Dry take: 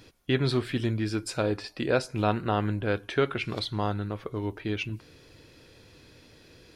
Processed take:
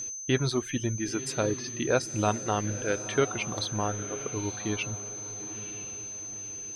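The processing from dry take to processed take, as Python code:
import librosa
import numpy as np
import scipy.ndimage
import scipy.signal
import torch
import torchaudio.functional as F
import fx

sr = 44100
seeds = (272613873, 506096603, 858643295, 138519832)

y = x + 10.0 ** (-33.0 / 20.0) * np.sin(2.0 * np.pi * 6200.0 * np.arange(len(x)) / sr)
y = fx.dereverb_blind(y, sr, rt60_s=1.5)
y = fx.echo_diffused(y, sr, ms=959, feedback_pct=41, wet_db=-12.5)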